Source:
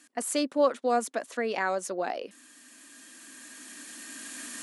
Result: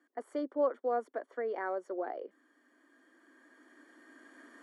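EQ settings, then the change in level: polynomial smoothing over 41 samples; ladder high-pass 300 Hz, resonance 45%; 0.0 dB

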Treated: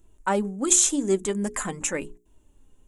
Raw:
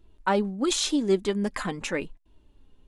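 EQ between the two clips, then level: resonant high shelf 5700 Hz +8.5 dB, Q 3; notches 60/120/180/240/300/360/420 Hz; 0.0 dB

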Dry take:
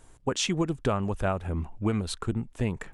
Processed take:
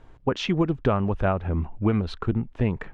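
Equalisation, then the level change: air absorption 270 m; +5.0 dB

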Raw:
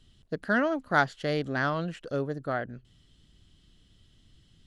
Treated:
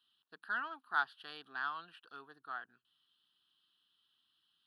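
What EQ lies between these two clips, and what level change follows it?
HPF 870 Hz 12 dB/oct; bell 5800 Hz -13.5 dB 0.54 oct; fixed phaser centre 2100 Hz, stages 6; -5.5 dB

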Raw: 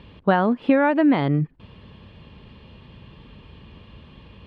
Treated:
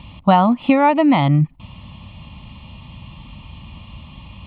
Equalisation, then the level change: fixed phaser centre 1600 Hz, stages 6; +9.0 dB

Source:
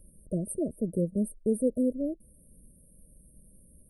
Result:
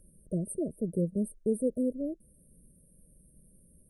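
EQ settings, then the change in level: fifteen-band EQ 160 Hz +5 dB, 400 Hz +4 dB, 1600 Hz +11 dB, 6300 Hz +9 dB; -5.0 dB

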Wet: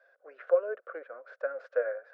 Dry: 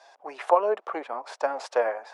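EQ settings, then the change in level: double band-pass 880 Hz, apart 1.5 oct; air absorption 79 m; 0.0 dB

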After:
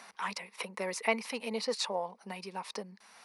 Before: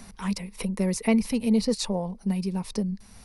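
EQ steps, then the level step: HPF 940 Hz 12 dB/oct; LPF 1600 Hz 6 dB/oct; +6.5 dB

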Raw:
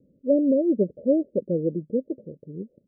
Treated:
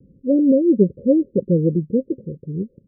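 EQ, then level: rippled Chebyshev low-pass 550 Hz, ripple 3 dB; low shelf 75 Hz +9 dB; low shelf 290 Hz +10 dB; +3.5 dB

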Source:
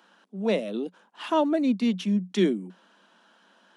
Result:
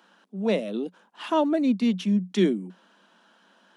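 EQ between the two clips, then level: low shelf 89 Hz +10.5 dB; 0.0 dB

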